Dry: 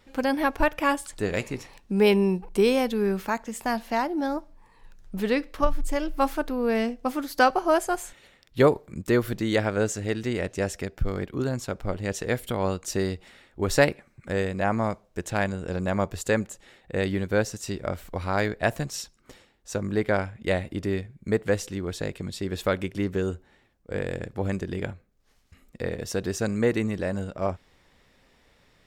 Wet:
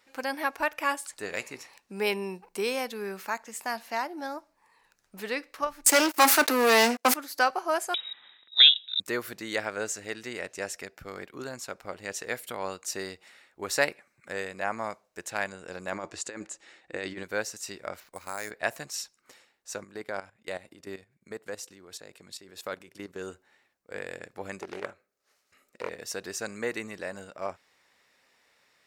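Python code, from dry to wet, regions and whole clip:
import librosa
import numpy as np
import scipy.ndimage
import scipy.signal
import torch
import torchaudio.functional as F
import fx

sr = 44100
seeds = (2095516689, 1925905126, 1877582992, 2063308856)

y = fx.chain(x, sr, fx.steep_highpass(hz=210.0, slope=96),
    fx.high_shelf(hz=3300.0, db=6.0),
    fx.leveller(passes=5), at=(5.86, 7.14))
y = fx.chain(y, sr, fx.low_shelf(hz=440.0, db=11.0),
    fx.freq_invert(carrier_hz=3800), at=(7.94, 9.0))
y = fx.chain(y, sr, fx.peak_eq(hz=320.0, db=10.0, octaves=0.22),
    fx.over_compress(threshold_db=-25.0, ratio=-0.5),
    fx.lowpass(hz=8400.0, slope=24), at=(15.92, 17.23))
y = fx.chain(y, sr, fx.level_steps(step_db=10),
    fx.sample_hold(seeds[0], rate_hz=8900.0, jitter_pct=0), at=(18.0, 18.51))
y = fx.chain(y, sr, fx.highpass(hz=49.0, slope=12),
    fx.dynamic_eq(hz=2100.0, q=1.3, threshold_db=-45.0, ratio=4.0, max_db=-5),
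    fx.level_steps(step_db=13), at=(19.84, 23.21))
y = fx.chain(y, sr, fx.low_shelf(hz=160.0, db=-7.0),
    fx.small_body(hz=(400.0, 570.0, 1300.0), ring_ms=25, db=7),
    fx.doppler_dist(depth_ms=0.34), at=(24.6, 25.89))
y = fx.highpass(y, sr, hz=1200.0, slope=6)
y = fx.peak_eq(y, sr, hz=3300.0, db=-5.5, octaves=0.34)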